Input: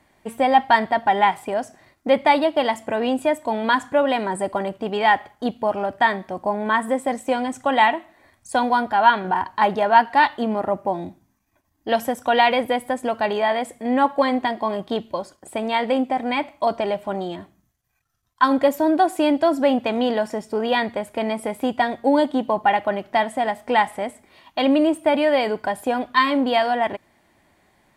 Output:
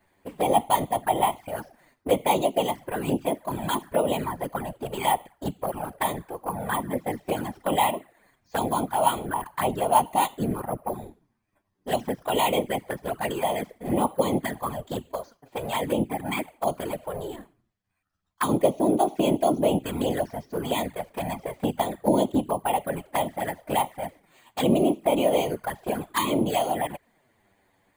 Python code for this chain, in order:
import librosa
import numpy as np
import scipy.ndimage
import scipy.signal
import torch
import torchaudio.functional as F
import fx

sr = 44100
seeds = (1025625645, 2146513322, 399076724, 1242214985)

y = np.repeat(scipy.signal.resample_poly(x, 1, 4), 4)[:len(x)]
y = fx.whisperise(y, sr, seeds[0])
y = fx.env_flanger(y, sr, rest_ms=10.8, full_db=-16.0)
y = y * 10.0 ** (-3.0 / 20.0)